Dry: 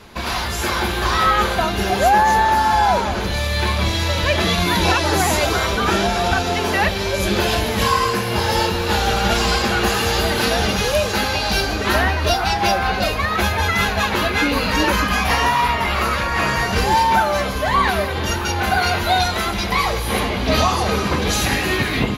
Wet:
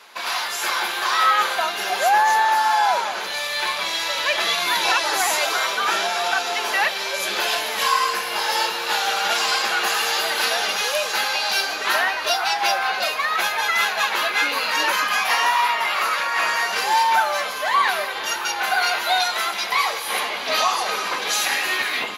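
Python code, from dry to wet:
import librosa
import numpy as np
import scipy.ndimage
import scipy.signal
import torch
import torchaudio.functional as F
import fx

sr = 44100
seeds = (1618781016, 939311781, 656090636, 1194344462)

y = scipy.signal.sosfilt(scipy.signal.butter(2, 800.0, 'highpass', fs=sr, output='sos'), x)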